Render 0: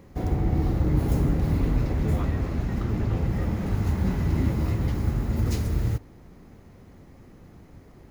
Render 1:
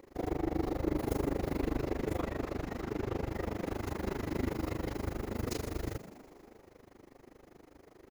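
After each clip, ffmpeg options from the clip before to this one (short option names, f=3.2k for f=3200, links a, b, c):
-filter_complex "[0:a]lowshelf=f=240:t=q:w=1.5:g=-10.5,tremolo=f=25:d=0.974,asplit=8[a][b][c][d][e][f][g][h];[b]adelay=122,afreqshift=73,volume=-15dB[i];[c]adelay=244,afreqshift=146,volume=-18.9dB[j];[d]adelay=366,afreqshift=219,volume=-22.8dB[k];[e]adelay=488,afreqshift=292,volume=-26.6dB[l];[f]adelay=610,afreqshift=365,volume=-30.5dB[m];[g]adelay=732,afreqshift=438,volume=-34.4dB[n];[h]adelay=854,afreqshift=511,volume=-38.3dB[o];[a][i][j][k][l][m][n][o]amix=inputs=8:normalize=0"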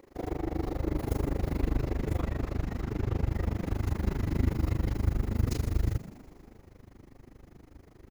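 -af "asubboost=boost=4.5:cutoff=200"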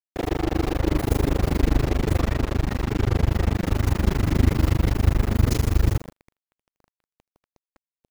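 -af "acrusher=bits=5:mix=0:aa=0.5,volume=8.5dB"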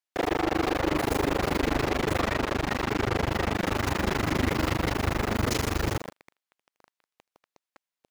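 -filter_complex "[0:a]asplit=2[a][b];[b]highpass=f=720:p=1,volume=23dB,asoftclip=type=tanh:threshold=-5dB[c];[a][c]amix=inputs=2:normalize=0,lowpass=f=4.9k:p=1,volume=-6dB,volume=-9dB"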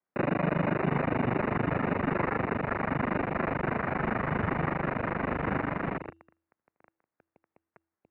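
-af "bandreject=f=244.6:t=h:w=4,bandreject=f=489.2:t=h:w=4,acrusher=samples=13:mix=1:aa=0.000001,highpass=f=270:t=q:w=0.5412,highpass=f=270:t=q:w=1.307,lowpass=f=2.5k:t=q:w=0.5176,lowpass=f=2.5k:t=q:w=0.7071,lowpass=f=2.5k:t=q:w=1.932,afreqshift=-160"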